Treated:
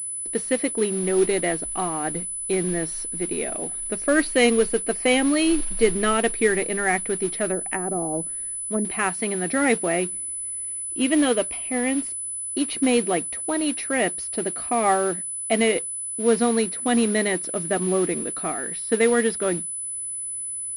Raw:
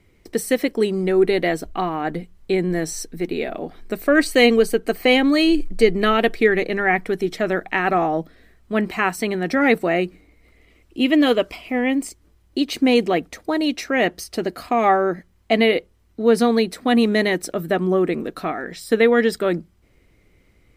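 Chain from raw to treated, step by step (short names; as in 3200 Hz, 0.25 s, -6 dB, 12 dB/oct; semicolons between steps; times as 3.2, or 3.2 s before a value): modulation noise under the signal 19 dB; 7.47–8.85 treble ducked by the level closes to 500 Hz, closed at -16 dBFS; pulse-width modulation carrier 10000 Hz; gain -4 dB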